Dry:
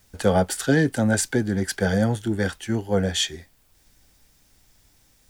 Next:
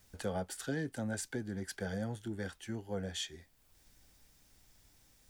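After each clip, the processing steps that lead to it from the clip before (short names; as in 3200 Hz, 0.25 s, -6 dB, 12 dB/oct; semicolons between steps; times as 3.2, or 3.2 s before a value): compressor 1.5:1, threshold -48 dBFS, peak gain reduction 12 dB; gain -6 dB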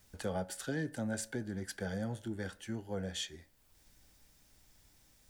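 reverb RT60 0.55 s, pre-delay 3 ms, DRR 15 dB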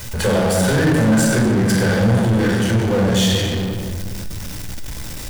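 shoebox room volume 1700 m³, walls mixed, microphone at 4.9 m; power-law curve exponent 0.5; gain +7 dB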